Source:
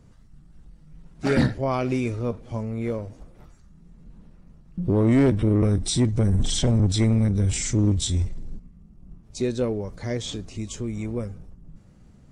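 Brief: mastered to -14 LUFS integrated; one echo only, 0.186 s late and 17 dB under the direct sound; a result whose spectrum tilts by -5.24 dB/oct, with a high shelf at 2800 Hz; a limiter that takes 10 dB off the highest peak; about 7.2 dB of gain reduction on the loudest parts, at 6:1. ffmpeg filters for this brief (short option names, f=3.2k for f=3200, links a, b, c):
-af "highshelf=f=2.8k:g=4.5,acompressor=threshold=-24dB:ratio=6,alimiter=level_in=1dB:limit=-24dB:level=0:latency=1,volume=-1dB,aecho=1:1:186:0.141,volume=19dB"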